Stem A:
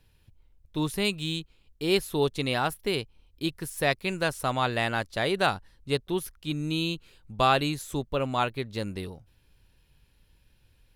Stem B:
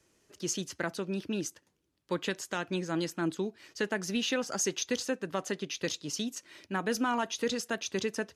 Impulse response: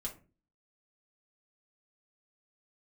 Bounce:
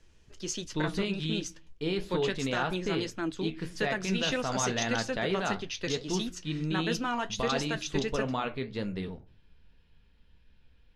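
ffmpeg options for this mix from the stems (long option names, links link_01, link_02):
-filter_complex "[0:a]alimiter=limit=-19.5dB:level=0:latency=1:release=31,flanger=delay=8.7:depth=7.2:regen=-65:speed=1.8:shape=sinusoidal,volume=0.5dB,asplit=2[link_01][link_02];[link_02]volume=-4dB[link_03];[1:a]aemphasis=mode=production:type=75kf,flanger=delay=7.6:depth=4.3:regen=-60:speed=1.6:shape=triangular,volume=2dB[link_04];[2:a]atrim=start_sample=2205[link_05];[link_03][link_05]afir=irnorm=-1:irlink=0[link_06];[link_01][link_04][link_06]amix=inputs=3:normalize=0,lowpass=3900"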